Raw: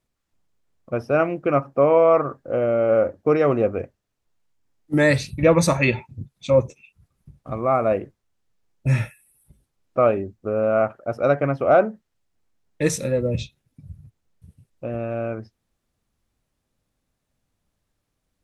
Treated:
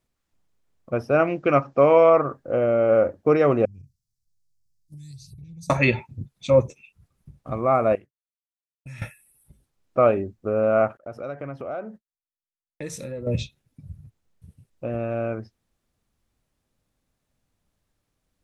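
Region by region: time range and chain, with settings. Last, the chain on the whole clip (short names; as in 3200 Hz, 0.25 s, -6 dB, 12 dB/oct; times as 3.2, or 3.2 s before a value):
1.27–2.1 LPF 6800 Hz 24 dB/oct + bell 5300 Hz +8.5 dB 2.6 oct
3.65–5.7 Chebyshev band-stop 150–4800 Hz, order 3 + compressor, threshold -41 dBFS
7.95–9.02 passive tone stack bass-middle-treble 5-5-5 + compressor, threshold -36 dBFS + expander -50 dBFS
10.97–13.27 expander -41 dBFS + compressor 3:1, threshold -34 dBFS
whole clip: dry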